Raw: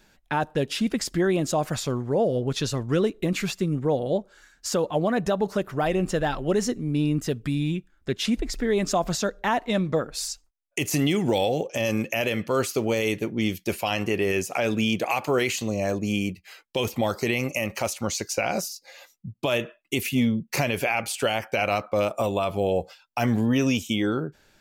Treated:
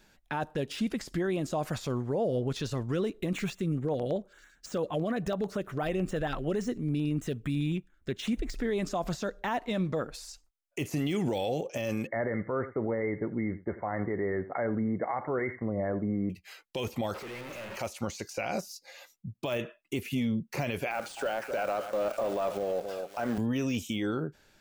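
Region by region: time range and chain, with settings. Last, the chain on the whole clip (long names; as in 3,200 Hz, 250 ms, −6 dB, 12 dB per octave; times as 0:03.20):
0:03.33–0:08.55: running median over 3 samples + auto-filter notch square 9 Hz 900–4,800 Hz
0:12.07–0:16.30: linear-phase brick-wall low-pass 2,200 Hz + single-tap delay 84 ms −19 dB
0:17.14–0:17.77: sign of each sample alone + bass and treble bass −7 dB, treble −13 dB + tuned comb filter 60 Hz, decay 1.2 s, mix 70%
0:20.91–0:23.38: loudspeaker in its box 270–9,300 Hz, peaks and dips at 580 Hz +5 dB, 1,500 Hz +9 dB, 2,300 Hz −4 dB + log-companded quantiser 4 bits + delay that swaps between a low-pass and a high-pass 257 ms, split 1,100 Hz, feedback 54%, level −13 dB
whole clip: de-essing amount 80%; brickwall limiter −19 dBFS; level −3 dB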